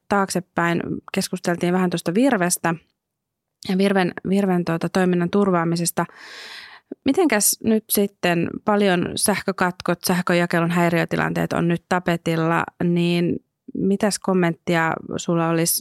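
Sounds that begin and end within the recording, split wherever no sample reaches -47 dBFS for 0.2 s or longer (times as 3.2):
3.63–13.39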